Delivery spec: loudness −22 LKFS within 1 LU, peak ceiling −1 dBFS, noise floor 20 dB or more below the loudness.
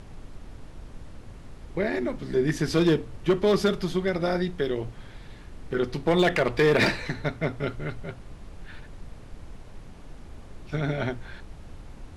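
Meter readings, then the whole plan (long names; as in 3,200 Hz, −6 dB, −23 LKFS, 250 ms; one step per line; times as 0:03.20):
share of clipped samples 0.5%; peaks flattened at −14.5 dBFS; background noise floor −45 dBFS; target noise floor −46 dBFS; integrated loudness −26.0 LKFS; sample peak −14.5 dBFS; target loudness −22.0 LKFS
→ clipped peaks rebuilt −14.5 dBFS
noise reduction from a noise print 6 dB
level +4 dB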